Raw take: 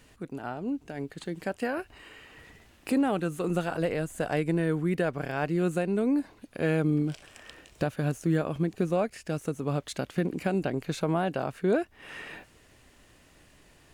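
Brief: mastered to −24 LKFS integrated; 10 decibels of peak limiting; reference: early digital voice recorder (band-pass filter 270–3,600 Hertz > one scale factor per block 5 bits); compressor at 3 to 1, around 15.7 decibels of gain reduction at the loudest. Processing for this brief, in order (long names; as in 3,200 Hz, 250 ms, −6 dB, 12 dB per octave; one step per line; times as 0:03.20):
downward compressor 3 to 1, threshold −44 dBFS
brickwall limiter −34 dBFS
band-pass filter 270–3,600 Hz
one scale factor per block 5 bits
level +23.5 dB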